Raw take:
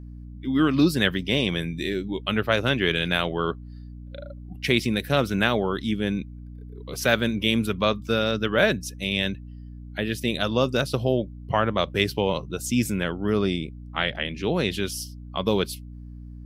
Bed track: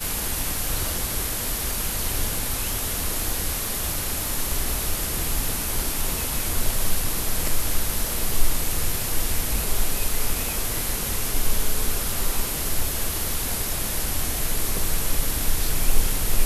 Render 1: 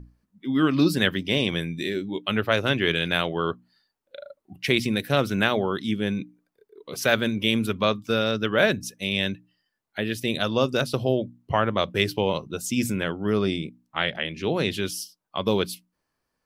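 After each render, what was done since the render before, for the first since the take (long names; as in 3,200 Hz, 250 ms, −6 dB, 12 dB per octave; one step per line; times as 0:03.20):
mains-hum notches 60/120/180/240/300 Hz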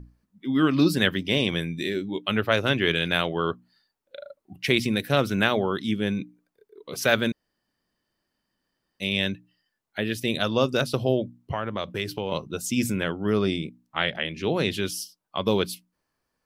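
0:07.32–0:09.00: fill with room tone
0:11.52–0:12.32: downward compressor 2 to 1, threshold −29 dBFS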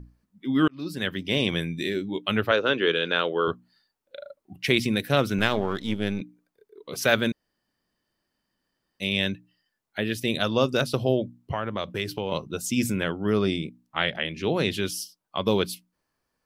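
0:00.68–0:01.46: fade in
0:02.51–0:03.48: loudspeaker in its box 270–5,800 Hz, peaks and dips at 470 Hz +8 dB, 710 Hz −6 dB, 1,400 Hz +4 dB, 2,100 Hz −7 dB, 5,400 Hz −7 dB
0:05.38–0:06.21: gain on one half-wave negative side −7 dB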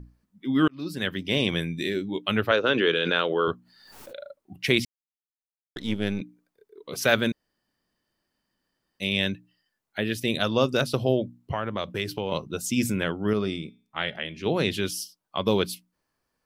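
0:02.64–0:04.26: background raised ahead of every attack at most 46 dB per second
0:04.85–0:05.76: silence
0:13.33–0:14.46: tuned comb filter 210 Hz, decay 0.43 s, mix 40%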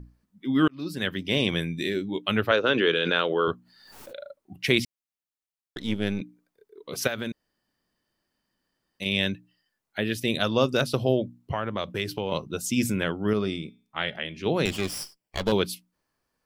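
0:07.07–0:09.06: downward compressor 5 to 1, threshold −27 dBFS
0:14.65–0:15.52: lower of the sound and its delayed copy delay 0.38 ms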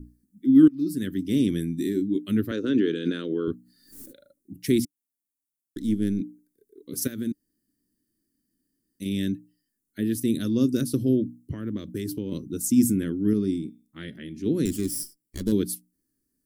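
drawn EQ curve 170 Hz 0 dB, 290 Hz +10 dB, 770 Hz −28 dB, 1,800 Hz −11 dB, 2,600 Hz −18 dB, 9,300 Hz +7 dB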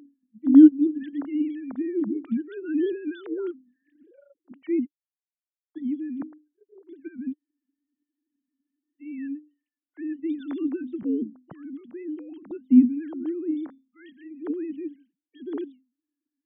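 three sine waves on the formant tracks
tape wow and flutter 17 cents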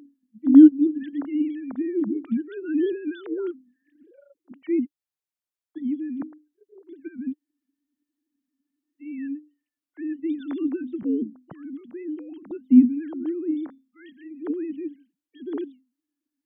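level +1.5 dB
brickwall limiter −3 dBFS, peak gain reduction 1 dB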